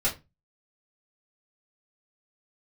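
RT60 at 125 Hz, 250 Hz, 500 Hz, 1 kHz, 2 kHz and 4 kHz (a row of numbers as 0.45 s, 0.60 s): 0.45 s, 0.30 s, 0.25 s, 0.20 s, 0.20 s, 0.20 s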